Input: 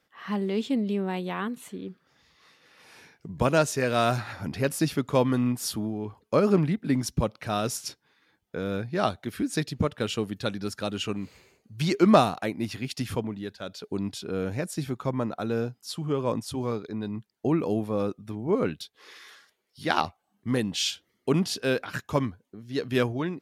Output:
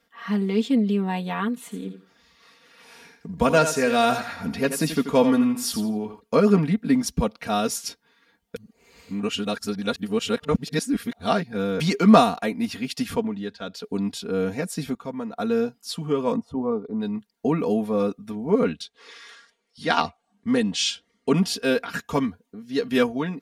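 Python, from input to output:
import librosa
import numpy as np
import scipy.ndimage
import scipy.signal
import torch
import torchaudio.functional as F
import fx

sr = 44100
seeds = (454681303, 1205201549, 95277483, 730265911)

y = fx.echo_thinned(x, sr, ms=84, feedback_pct=26, hz=210.0, wet_db=-9, at=(1.7, 6.19), fade=0.02)
y = fx.lowpass(y, sr, hz=fx.line((13.15, 11000.0), (13.73, 5200.0)), slope=12, at=(13.15, 13.73), fade=0.02)
y = fx.savgol(y, sr, points=65, at=(16.36, 17.0))
y = fx.lowpass(y, sr, hz=9300.0, slope=24, at=(18.64, 21.37))
y = fx.edit(y, sr, fx.reverse_span(start_s=8.56, length_s=3.24),
    fx.clip_gain(start_s=14.95, length_s=0.42, db=-7.0), tone=tone)
y = y + 0.83 * np.pad(y, (int(4.3 * sr / 1000.0), 0))[:len(y)]
y = y * 10.0 ** (1.5 / 20.0)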